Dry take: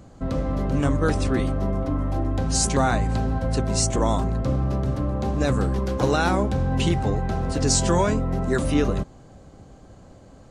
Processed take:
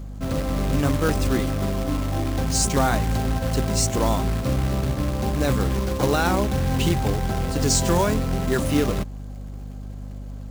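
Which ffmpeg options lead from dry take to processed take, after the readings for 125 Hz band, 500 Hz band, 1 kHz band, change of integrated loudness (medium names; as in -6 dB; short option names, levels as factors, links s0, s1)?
+0.5 dB, 0.0 dB, +0.5 dB, +0.5 dB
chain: -af "acrusher=bits=3:mode=log:mix=0:aa=0.000001,aeval=exprs='val(0)+0.0224*(sin(2*PI*50*n/s)+sin(2*PI*2*50*n/s)/2+sin(2*PI*3*50*n/s)/3+sin(2*PI*4*50*n/s)/4+sin(2*PI*5*50*n/s)/5)':c=same"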